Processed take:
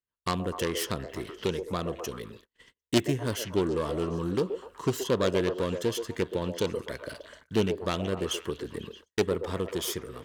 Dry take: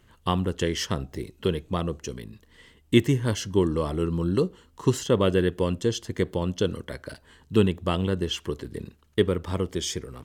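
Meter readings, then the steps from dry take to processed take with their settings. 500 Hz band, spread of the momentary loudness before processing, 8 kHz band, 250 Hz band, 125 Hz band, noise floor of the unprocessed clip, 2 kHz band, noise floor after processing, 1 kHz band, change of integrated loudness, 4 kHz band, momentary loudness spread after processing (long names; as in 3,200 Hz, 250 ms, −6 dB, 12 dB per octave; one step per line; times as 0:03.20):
−3.0 dB, 14 LU, −1.5 dB, −5.0 dB, −7.5 dB, −60 dBFS, −2.0 dB, below −85 dBFS, −2.0 dB, −4.0 dB, −2.5 dB, 11 LU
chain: phase distortion by the signal itself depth 0.31 ms
notch filter 820 Hz, Q 12
in parallel at −3 dB: downward compressor 12 to 1, threshold −30 dBFS, peak gain reduction 18 dB
on the sum: low-shelf EQ 220 Hz −7.5 dB
on a send: echo through a band-pass that steps 125 ms, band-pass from 510 Hz, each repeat 0.7 octaves, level −5 dB
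on the sum: noise gate −46 dBFS, range −38 dB
level −3.5 dB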